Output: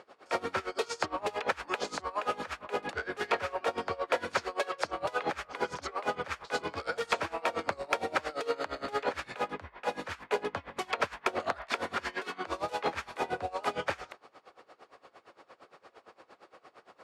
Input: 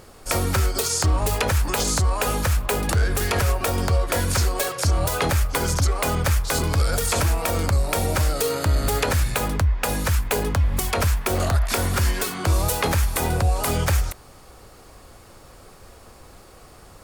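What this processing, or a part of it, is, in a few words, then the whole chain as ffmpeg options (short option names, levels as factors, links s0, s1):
helicopter radio: -af "highpass=400,lowpass=3000,aeval=exprs='val(0)*pow(10,-21*(0.5-0.5*cos(2*PI*8.7*n/s))/20)':c=same,asoftclip=type=hard:threshold=0.133"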